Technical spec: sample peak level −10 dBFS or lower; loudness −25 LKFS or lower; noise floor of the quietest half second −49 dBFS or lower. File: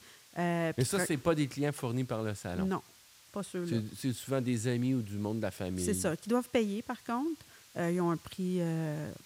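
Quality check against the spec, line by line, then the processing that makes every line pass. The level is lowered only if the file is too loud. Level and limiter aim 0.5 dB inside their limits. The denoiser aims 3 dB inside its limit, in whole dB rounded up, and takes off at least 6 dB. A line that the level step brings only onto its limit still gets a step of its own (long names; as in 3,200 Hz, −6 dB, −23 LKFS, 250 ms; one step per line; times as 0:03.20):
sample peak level −16.0 dBFS: in spec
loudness −33.5 LKFS: in spec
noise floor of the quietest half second −59 dBFS: in spec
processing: no processing needed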